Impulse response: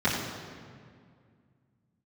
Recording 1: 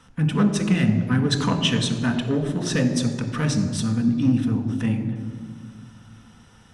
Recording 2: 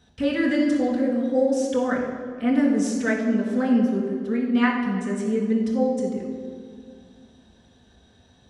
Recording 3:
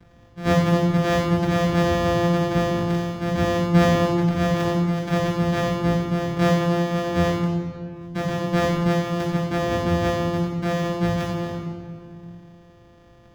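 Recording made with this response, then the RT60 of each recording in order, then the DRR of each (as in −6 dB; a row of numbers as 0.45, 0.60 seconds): 3; 2.1, 2.1, 2.1 seconds; 4.0, −5.0, −12.0 decibels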